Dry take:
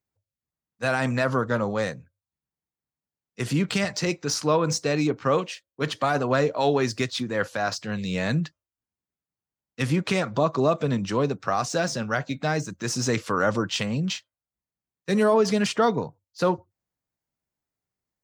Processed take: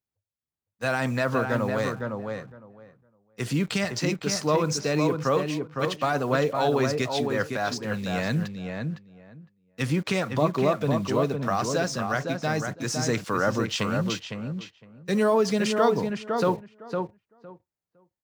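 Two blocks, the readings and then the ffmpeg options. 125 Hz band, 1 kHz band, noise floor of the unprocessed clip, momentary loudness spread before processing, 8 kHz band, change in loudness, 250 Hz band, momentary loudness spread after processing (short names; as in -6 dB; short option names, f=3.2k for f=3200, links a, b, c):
-0.5 dB, -0.5 dB, under -85 dBFS, 8 LU, -1.5 dB, -1.0 dB, -0.5 dB, 10 LU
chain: -filter_complex "[0:a]asplit=2[a][b];[b]acrusher=bits=6:mix=0:aa=0.000001,volume=-4dB[c];[a][c]amix=inputs=2:normalize=0,asplit=2[d][e];[e]adelay=509,lowpass=f=2k:p=1,volume=-4.5dB,asplit=2[f][g];[g]adelay=509,lowpass=f=2k:p=1,volume=0.16,asplit=2[h][i];[i]adelay=509,lowpass=f=2k:p=1,volume=0.16[j];[d][f][h][j]amix=inputs=4:normalize=0,volume=-6dB"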